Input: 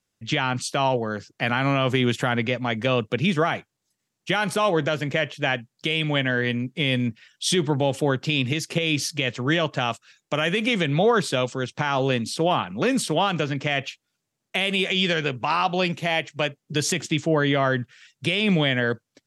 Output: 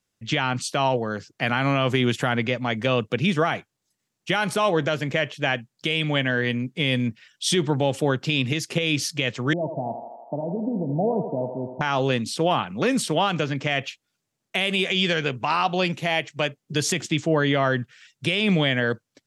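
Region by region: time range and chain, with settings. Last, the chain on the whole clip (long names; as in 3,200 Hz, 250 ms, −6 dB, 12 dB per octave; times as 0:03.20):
0:09.53–0:11.81: Chebyshev low-pass with heavy ripple 950 Hz, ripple 6 dB + feedback echo with a high-pass in the loop 81 ms, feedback 80%, high-pass 360 Hz, level −6 dB
whole clip: no processing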